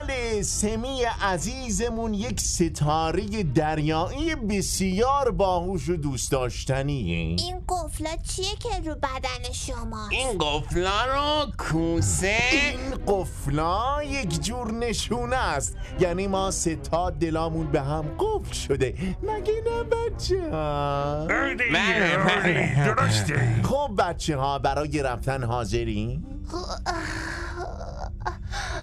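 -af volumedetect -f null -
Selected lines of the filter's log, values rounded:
mean_volume: -25.4 dB
max_volume: -8.2 dB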